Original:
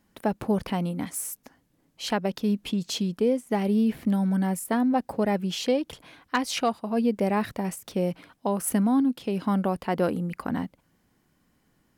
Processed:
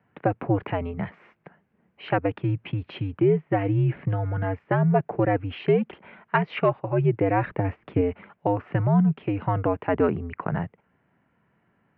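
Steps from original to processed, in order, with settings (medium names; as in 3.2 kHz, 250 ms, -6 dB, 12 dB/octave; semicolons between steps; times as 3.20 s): 7.43–8.01 s: bass shelf 230 Hz +10 dB; mistuned SSB -91 Hz 230–2600 Hz; trim +4 dB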